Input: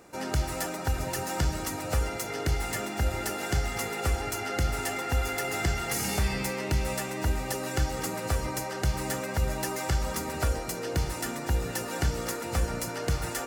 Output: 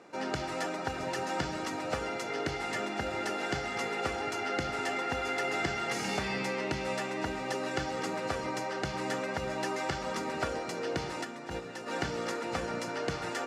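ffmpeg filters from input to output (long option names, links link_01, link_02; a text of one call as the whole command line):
ffmpeg -i in.wav -filter_complex "[0:a]asplit=3[link_01][link_02][link_03];[link_01]afade=type=out:start_time=11.23:duration=0.02[link_04];[link_02]agate=range=-7dB:threshold=-25dB:ratio=16:detection=peak,afade=type=in:start_time=11.23:duration=0.02,afade=type=out:start_time=11.86:duration=0.02[link_05];[link_03]afade=type=in:start_time=11.86:duration=0.02[link_06];[link_04][link_05][link_06]amix=inputs=3:normalize=0,highpass=200,lowpass=4600" out.wav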